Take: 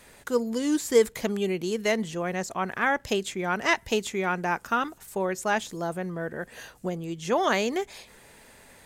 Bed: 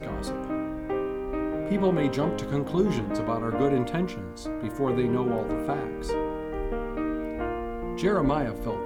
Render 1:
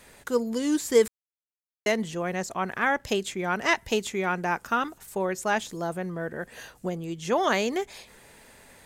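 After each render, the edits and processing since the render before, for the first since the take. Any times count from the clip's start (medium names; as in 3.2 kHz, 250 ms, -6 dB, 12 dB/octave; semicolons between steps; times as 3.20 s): 1.08–1.86 s: mute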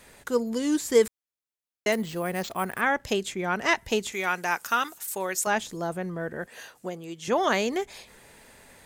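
1.92–2.81 s: sample-rate reducer 11 kHz; 4.12–5.47 s: tilt EQ +3.5 dB/octave; 6.46–7.28 s: high-pass 400 Hz 6 dB/octave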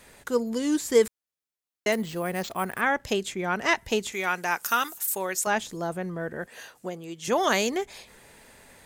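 4.62–5.19 s: treble shelf 6.4 kHz -> 11 kHz +11 dB; 7.23–7.69 s: treble shelf 6.8 kHz -> 4.6 kHz +10.5 dB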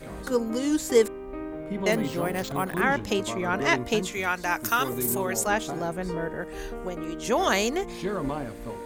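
add bed -6 dB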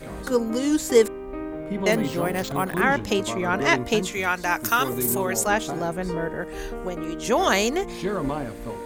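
trim +3 dB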